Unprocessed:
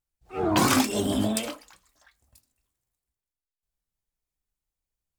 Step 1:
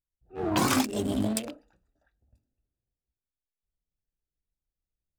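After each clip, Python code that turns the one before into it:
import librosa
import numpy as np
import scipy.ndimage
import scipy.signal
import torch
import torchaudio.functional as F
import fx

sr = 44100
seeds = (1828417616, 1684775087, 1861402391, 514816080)

y = fx.wiener(x, sr, points=41)
y = fx.rider(y, sr, range_db=10, speed_s=2.0)
y = F.gain(torch.from_numpy(y), -1.5).numpy()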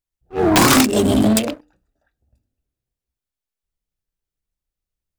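y = (np.mod(10.0 ** (15.5 / 20.0) * x + 1.0, 2.0) - 1.0) / 10.0 ** (15.5 / 20.0)
y = fx.hum_notches(y, sr, base_hz=50, count=6)
y = fx.leveller(y, sr, passes=2)
y = F.gain(torch.from_numpy(y), 8.0).numpy()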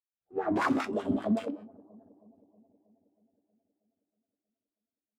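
y = fx.comb_fb(x, sr, f0_hz=95.0, decay_s=0.35, harmonics='all', damping=0.0, mix_pct=70)
y = fx.wah_lfo(y, sr, hz=5.1, low_hz=210.0, high_hz=1600.0, q=2.5)
y = fx.echo_bbd(y, sr, ms=318, stages=2048, feedback_pct=61, wet_db=-23)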